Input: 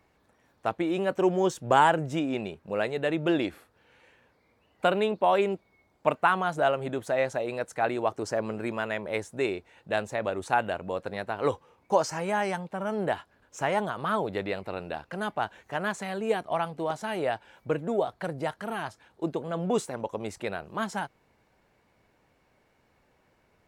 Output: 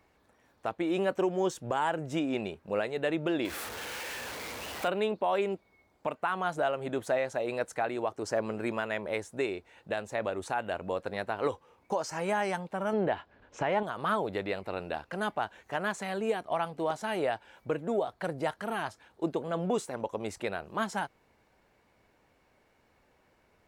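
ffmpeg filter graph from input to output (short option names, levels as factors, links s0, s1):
-filter_complex "[0:a]asettb=1/sr,asplit=3[s0][s1][s2];[s0]atrim=end=3.454[s3];[s1]atrim=start=3.45:end=4.88,asetpts=PTS-STARTPTS,afade=t=in:d=0.004:c=qsin,afade=t=out:st=1.426:d=0.004:c=qsin,aeval=exprs='val(0)+0.5*0.0237*sgn(val(0))':c=same,highpass=43,lowshelf=f=400:g=-6.5[s4];[s2]atrim=start=4.876[s5];[s3][s4]acrossfade=d=0.004:c1=hsin:c2=qsin[s6];[s6][s5]acrossfade=d=0.004:c1=qsin:c2=hsin,asettb=1/sr,asplit=3[s7][s8][s9];[s7]atrim=end=12.934[s10];[s8]atrim=start=12.93:end=13.83,asetpts=PTS-STARTPTS,afade=t=in:d=0.004:c=qsin,afade=t=out:st=0.896:d=0.004:c=qsin,lowpass=3200,equalizer=f=1300:t=o:w=0.77:g=-3.5,acontrast=46[s11];[s9]atrim=start=13.826[s12];[s10][s11]acrossfade=d=0.004:c1=hsin:c2=qsin[s13];[s13][s12]acrossfade=d=0.004:c1=qsin:c2=hsin,alimiter=limit=0.112:level=0:latency=1:release=297,equalizer=f=140:t=o:w=0.98:g=-3.5"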